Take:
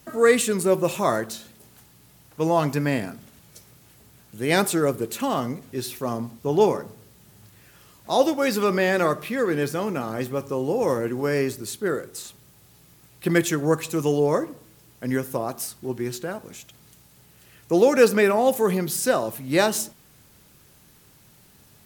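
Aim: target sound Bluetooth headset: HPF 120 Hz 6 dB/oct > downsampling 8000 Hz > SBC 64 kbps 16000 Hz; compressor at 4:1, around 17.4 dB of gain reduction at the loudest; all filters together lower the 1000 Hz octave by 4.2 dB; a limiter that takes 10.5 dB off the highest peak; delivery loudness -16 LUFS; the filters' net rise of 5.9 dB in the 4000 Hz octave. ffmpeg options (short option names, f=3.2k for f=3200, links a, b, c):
-af "equalizer=f=1k:t=o:g=-6,equalizer=f=4k:t=o:g=7.5,acompressor=threshold=-34dB:ratio=4,alimiter=level_in=6dB:limit=-24dB:level=0:latency=1,volume=-6dB,highpass=f=120:p=1,aresample=8000,aresample=44100,volume=25.5dB" -ar 16000 -c:a sbc -b:a 64k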